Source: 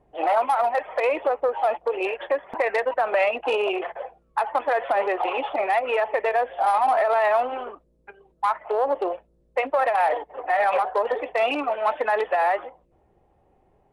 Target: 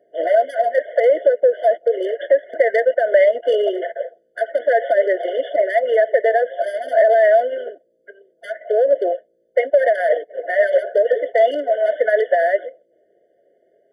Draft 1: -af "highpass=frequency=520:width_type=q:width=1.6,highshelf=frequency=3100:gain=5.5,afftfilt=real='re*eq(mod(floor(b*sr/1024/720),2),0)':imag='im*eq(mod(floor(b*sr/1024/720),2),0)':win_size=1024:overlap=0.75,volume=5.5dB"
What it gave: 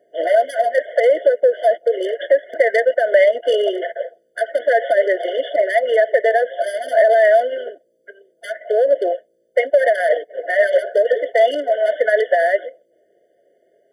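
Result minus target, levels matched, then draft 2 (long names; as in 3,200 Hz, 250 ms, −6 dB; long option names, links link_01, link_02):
8,000 Hz band +10.0 dB
-af "highpass=frequency=520:width_type=q:width=1.6,highshelf=frequency=3100:gain=-6,afftfilt=real='re*eq(mod(floor(b*sr/1024/720),2),0)':imag='im*eq(mod(floor(b*sr/1024/720),2),0)':win_size=1024:overlap=0.75,volume=5.5dB"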